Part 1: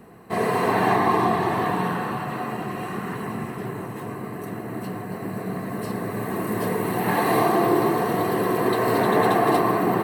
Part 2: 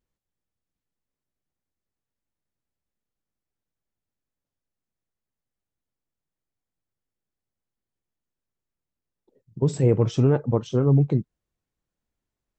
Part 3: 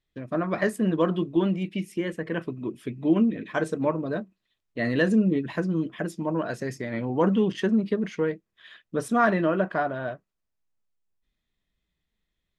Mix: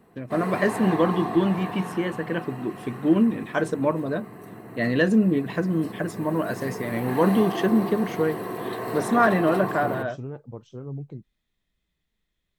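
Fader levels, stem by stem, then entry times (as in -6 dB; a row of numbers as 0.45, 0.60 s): -9.5, -16.5, +2.0 dB; 0.00, 0.00, 0.00 s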